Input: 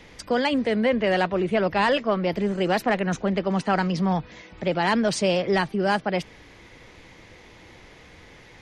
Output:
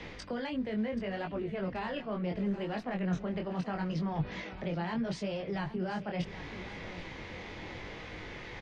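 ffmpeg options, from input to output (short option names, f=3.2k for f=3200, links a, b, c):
-filter_complex "[0:a]areverse,acompressor=threshold=-32dB:ratio=4,areverse,flanger=delay=19:depth=4.7:speed=0.74,acrossover=split=190[a][b];[b]acompressor=threshold=-44dB:ratio=4[c];[a][c]amix=inputs=2:normalize=0,lowpass=4.4k,asplit=2[d][e];[e]aecho=0:1:781|1562|2343|3124:0.188|0.0791|0.0332|0.014[f];[d][f]amix=inputs=2:normalize=0,volume=7.5dB"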